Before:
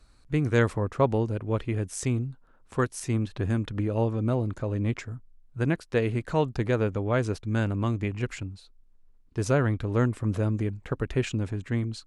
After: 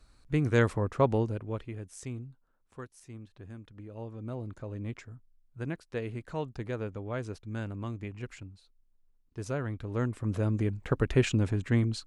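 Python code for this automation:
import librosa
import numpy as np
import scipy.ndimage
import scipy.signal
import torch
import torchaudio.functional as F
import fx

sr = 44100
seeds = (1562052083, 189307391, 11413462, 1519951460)

y = fx.gain(x, sr, db=fx.line((1.21, -2.0), (1.76, -12.0), (2.3, -12.0), (2.92, -19.0), (3.76, -19.0), (4.49, -10.0), (9.65, -10.0), (10.94, 2.0)))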